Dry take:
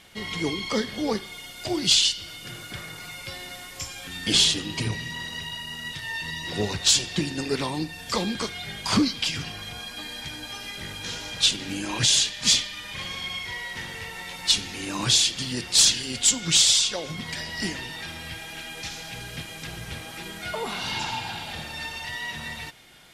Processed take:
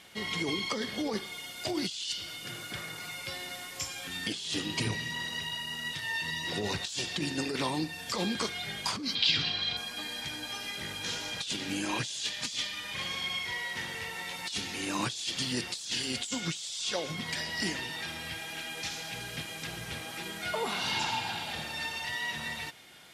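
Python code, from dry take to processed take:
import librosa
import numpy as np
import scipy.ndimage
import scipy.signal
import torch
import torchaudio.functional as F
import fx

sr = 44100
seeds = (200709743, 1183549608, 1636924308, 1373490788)

y = fx.highpass(x, sr, hz=150.0, slope=6)
y = fx.over_compress(y, sr, threshold_db=-28.0, ratio=-1.0)
y = fx.lowpass_res(y, sr, hz=4000.0, q=4.6, at=(9.15, 9.77))
y = F.gain(torch.from_numpy(y), -4.5).numpy()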